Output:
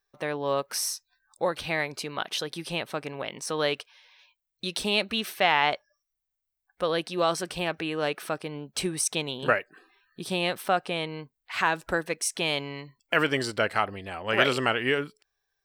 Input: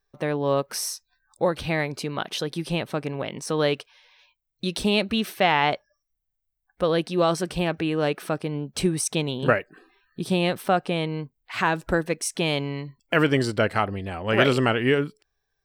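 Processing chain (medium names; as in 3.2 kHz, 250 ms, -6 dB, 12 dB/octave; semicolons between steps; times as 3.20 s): bass shelf 410 Hz -11.5 dB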